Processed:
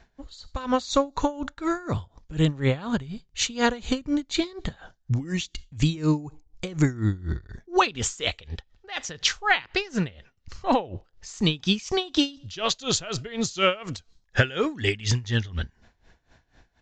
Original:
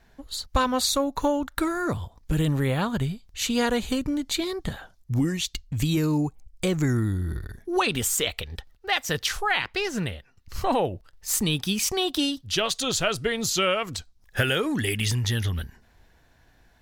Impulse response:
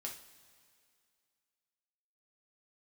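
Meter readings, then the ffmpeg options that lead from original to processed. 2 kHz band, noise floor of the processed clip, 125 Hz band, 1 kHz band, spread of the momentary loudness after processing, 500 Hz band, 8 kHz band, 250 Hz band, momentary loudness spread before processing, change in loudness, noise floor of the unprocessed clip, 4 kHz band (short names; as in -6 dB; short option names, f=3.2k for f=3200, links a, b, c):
0.0 dB, -67 dBFS, 0.0 dB, 0.0 dB, 14 LU, -0.5 dB, -4.0 dB, 0.0 dB, 10 LU, -0.5 dB, -60 dBFS, -1.0 dB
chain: -filter_complex "[0:a]aresample=16000,aresample=44100,asplit=2[a][b];[1:a]atrim=start_sample=2205,afade=t=out:st=0.34:d=0.01,atrim=end_sample=15435[c];[b][c]afir=irnorm=-1:irlink=0,volume=-19.5dB[d];[a][d]amix=inputs=2:normalize=0,aeval=exprs='val(0)*pow(10,-20*(0.5-0.5*cos(2*PI*4.1*n/s))/20)':c=same,volume=4.5dB"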